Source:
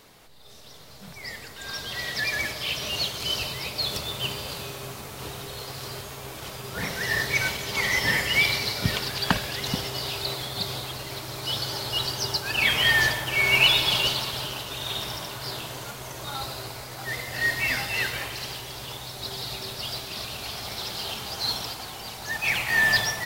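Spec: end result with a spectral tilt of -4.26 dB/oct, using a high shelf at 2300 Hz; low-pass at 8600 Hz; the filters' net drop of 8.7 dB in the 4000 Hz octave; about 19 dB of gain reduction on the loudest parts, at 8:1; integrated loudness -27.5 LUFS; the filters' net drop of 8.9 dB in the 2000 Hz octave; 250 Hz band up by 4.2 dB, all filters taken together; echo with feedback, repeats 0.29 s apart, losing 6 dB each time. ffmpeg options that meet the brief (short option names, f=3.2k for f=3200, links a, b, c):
-af "lowpass=8.6k,equalizer=f=250:t=o:g=6,equalizer=f=2k:t=o:g=-7,highshelf=f=2.3k:g=-5,equalizer=f=4k:t=o:g=-4,acompressor=threshold=-38dB:ratio=8,aecho=1:1:290|580|870|1160|1450|1740:0.501|0.251|0.125|0.0626|0.0313|0.0157,volume=13dB"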